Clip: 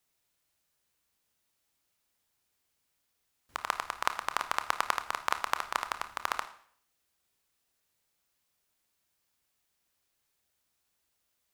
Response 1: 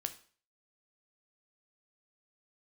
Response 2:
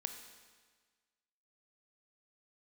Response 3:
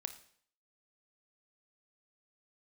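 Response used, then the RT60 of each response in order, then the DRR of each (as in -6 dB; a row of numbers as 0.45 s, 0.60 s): 3; 0.45 s, 1.5 s, 0.60 s; 8.0 dB, 6.0 dB, 8.5 dB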